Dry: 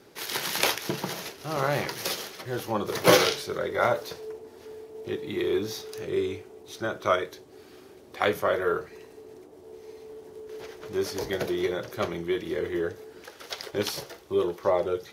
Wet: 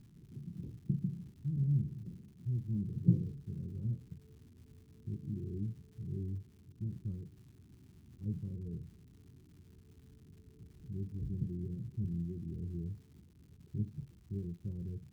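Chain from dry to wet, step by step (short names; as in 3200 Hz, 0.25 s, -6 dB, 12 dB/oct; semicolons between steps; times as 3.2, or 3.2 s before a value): inverse Chebyshev low-pass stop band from 610 Hz, stop band 60 dB; upward compressor, threshold -59 dBFS; crackle 300/s -63 dBFS; gain +5 dB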